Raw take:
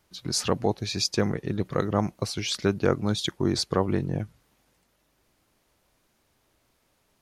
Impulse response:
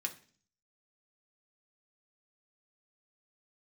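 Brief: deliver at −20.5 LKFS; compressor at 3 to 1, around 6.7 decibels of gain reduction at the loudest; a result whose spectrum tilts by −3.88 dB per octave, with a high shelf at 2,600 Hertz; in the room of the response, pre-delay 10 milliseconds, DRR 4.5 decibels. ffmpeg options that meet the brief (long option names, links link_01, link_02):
-filter_complex "[0:a]highshelf=frequency=2600:gain=3.5,acompressor=threshold=-27dB:ratio=3,asplit=2[link_01][link_02];[1:a]atrim=start_sample=2205,adelay=10[link_03];[link_02][link_03]afir=irnorm=-1:irlink=0,volume=-5dB[link_04];[link_01][link_04]amix=inputs=2:normalize=0,volume=9.5dB"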